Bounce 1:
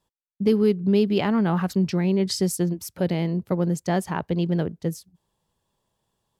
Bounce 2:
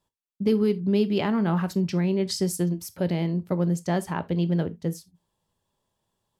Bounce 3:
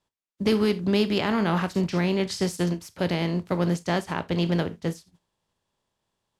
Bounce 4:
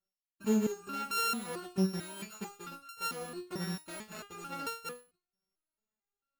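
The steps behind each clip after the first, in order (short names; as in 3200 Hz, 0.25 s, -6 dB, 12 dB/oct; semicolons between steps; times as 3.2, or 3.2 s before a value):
non-linear reverb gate 0.1 s falling, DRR 11.5 dB; gain -2.5 dB
spectral contrast lowered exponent 0.67; air absorption 51 m
sample sorter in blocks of 32 samples; stepped resonator 4.5 Hz 190–460 Hz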